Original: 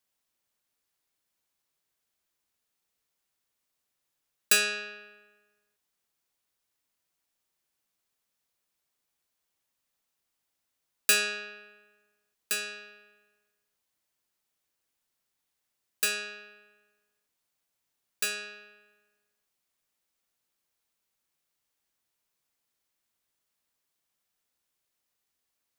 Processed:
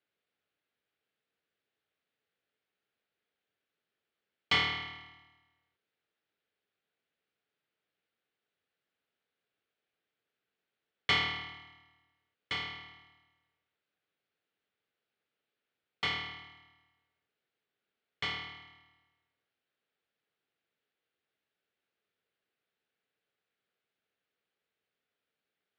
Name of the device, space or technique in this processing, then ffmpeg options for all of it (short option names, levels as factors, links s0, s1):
ring modulator pedal into a guitar cabinet: -af "aeval=exprs='val(0)*sgn(sin(2*PI*500*n/s))':c=same,highpass=94,equalizer=f=440:t=q:w=4:g=7,equalizer=f=1000:t=q:w=4:g=-8,equalizer=f=1500:t=q:w=4:g=3,lowpass=f=3600:w=0.5412,lowpass=f=3600:w=1.3066"